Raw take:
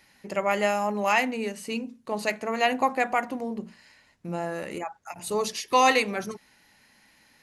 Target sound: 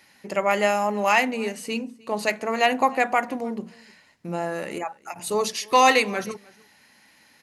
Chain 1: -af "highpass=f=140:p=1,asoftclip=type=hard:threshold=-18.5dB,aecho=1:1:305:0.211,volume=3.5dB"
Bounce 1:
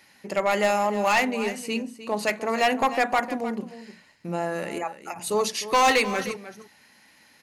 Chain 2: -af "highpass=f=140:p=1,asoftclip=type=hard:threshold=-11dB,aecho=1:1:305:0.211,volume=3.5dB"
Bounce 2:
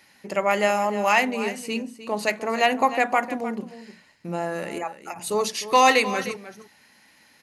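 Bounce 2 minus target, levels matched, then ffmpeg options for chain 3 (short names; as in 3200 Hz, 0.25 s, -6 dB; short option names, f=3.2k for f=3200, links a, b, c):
echo-to-direct +11.5 dB
-af "highpass=f=140:p=1,asoftclip=type=hard:threshold=-11dB,aecho=1:1:305:0.0562,volume=3.5dB"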